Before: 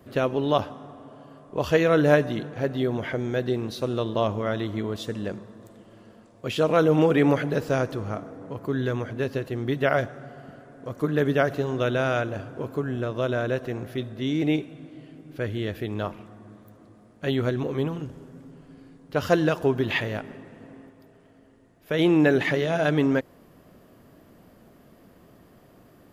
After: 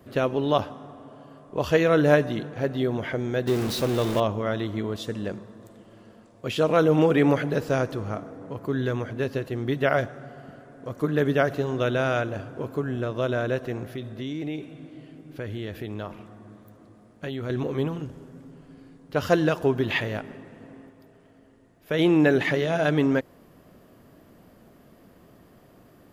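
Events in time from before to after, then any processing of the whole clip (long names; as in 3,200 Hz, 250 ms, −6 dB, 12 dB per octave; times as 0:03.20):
0:03.47–0:04.20: converter with a step at zero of −27 dBFS
0:13.94–0:17.50: downward compressor 4 to 1, threshold −29 dBFS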